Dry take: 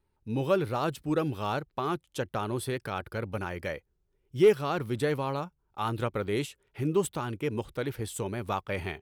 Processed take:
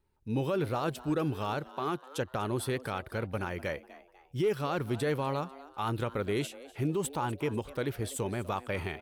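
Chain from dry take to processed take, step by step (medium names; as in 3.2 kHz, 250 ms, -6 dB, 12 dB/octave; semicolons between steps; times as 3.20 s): 1.70–2.18 s: high-pass 140 Hz 12 dB/octave; 7.04–7.49 s: peaking EQ 870 Hz +9 dB 0.44 oct; peak limiter -22 dBFS, peak gain reduction 9 dB; frequency-shifting echo 247 ms, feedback 39%, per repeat +130 Hz, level -18 dB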